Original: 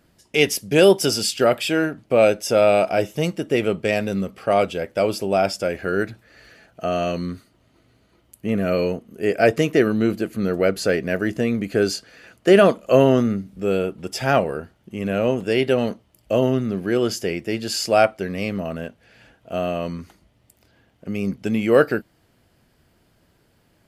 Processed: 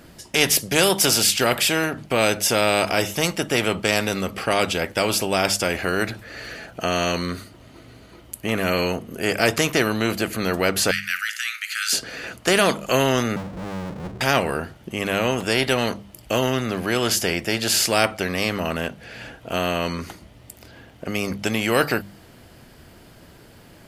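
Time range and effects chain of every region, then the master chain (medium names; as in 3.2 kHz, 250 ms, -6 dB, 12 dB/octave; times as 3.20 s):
10.91–11.93 s: steep high-pass 1.3 kHz 96 dB/octave + flutter echo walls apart 9.5 m, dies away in 0.23 s
13.36–14.21 s: four-pole ladder low-pass 200 Hz, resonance 35% + power-law waveshaper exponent 0.5
whole clip: hum notches 50/100/150/200 Hz; spectrum-flattening compressor 2:1; trim +1 dB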